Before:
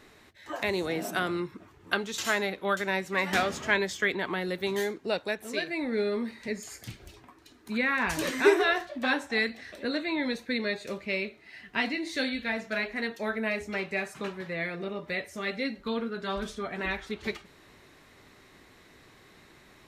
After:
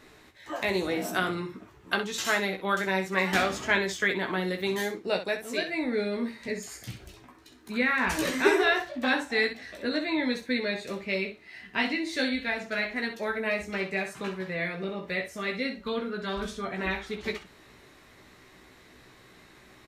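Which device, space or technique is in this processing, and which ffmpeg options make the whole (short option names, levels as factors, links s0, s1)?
slapback doubling: -filter_complex "[0:a]asplit=3[s0][s1][s2];[s1]adelay=16,volume=0.562[s3];[s2]adelay=64,volume=0.335[s4];[s0][s3][s4]amix=inputs=3:normalize=0"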